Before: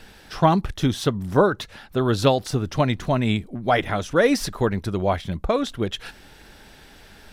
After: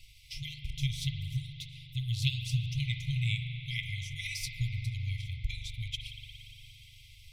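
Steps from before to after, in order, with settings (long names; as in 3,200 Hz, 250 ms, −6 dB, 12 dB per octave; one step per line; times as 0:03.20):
transient designer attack +4 dB, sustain −3 dB
spring reverb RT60 3.7 s, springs 41 ms, chirp 30 ms, DRR 3 dB
brick-wall band-stop 140–2,000 Hz
level −7 dB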